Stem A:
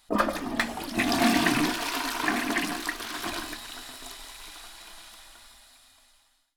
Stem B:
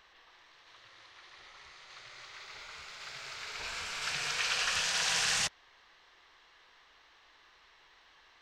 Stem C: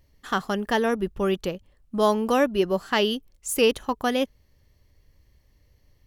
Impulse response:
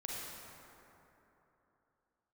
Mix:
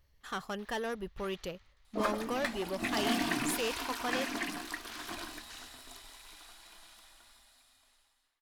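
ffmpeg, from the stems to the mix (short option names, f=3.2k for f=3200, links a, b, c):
-filter_complex "[0:a]adelay=1850,volume=-9dB[a];[1:a]acompressor=threshold=-45dB:ratio=1.5,aeval=exprs='val(0)*pow(10,-22*if(lt(mod(1.7*n/s,1),2*abs(1.7)/1000),1-mod(1.7*n/s,1)/(2*abs(1.7)/1000),(mod(1.7*n/s,1)-2*abs(1.7)/1000)/(1-2*abs(1.7)/1000))/20)':c=same,volume=0dB,asplit=2[b][c];[c]volume=-13.5dB[d];[2:a]equalizer=f=260:w=0.79:g=-7.5,asoftclip=type=tanh:threshold=-23.5dB,volume=-6.5dB,asplit=2[e][f];[f]apad=whole_len=371101[g];[b][g]sidechaingate=range=-21dB:threshold=-60dB:ratio=16:detection=peak[h];[d]aecho=0:1:207:1[i];[a][h][e][i]amix=inputs=4:normalize=0"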